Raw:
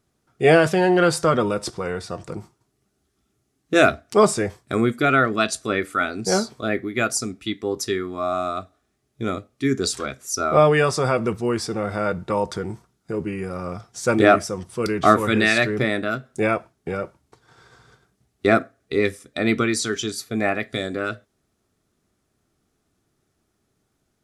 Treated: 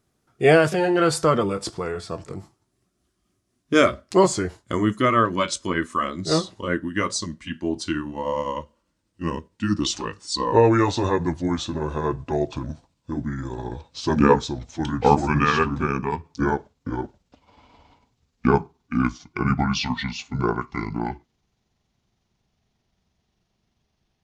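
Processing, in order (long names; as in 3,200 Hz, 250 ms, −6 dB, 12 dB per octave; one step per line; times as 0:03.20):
pitch glide at a constant tempo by −11 semitones starting unshifted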